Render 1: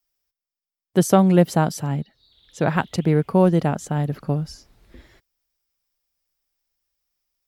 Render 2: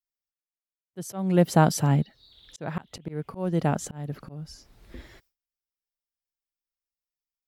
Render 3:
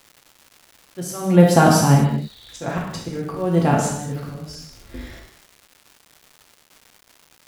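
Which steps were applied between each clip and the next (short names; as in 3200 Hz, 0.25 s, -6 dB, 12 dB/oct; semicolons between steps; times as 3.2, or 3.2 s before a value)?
gate with hold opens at -55 dBFS; auto swell 0.634 s; gain +3 dB
non-linear reverb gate 0.28 s falling, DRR -3 dB; crackle 420/s -41 dBFS; gain +4.5 dB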